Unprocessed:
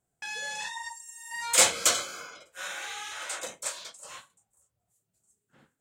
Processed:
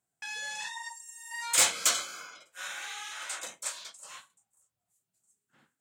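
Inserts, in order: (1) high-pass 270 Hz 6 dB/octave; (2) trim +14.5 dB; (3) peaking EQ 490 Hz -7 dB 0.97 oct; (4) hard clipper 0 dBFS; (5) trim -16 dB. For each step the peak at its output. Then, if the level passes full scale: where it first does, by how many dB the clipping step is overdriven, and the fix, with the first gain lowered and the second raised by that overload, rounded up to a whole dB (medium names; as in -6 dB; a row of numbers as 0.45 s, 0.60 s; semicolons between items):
-7.0 dBFS, +7.5 dBFS, +7.0 dBFS, 0.0 dBFS, -16.0 dBFS; step 2, 7.0 dB; step 2 +7.5 dB, step 5 -9 dB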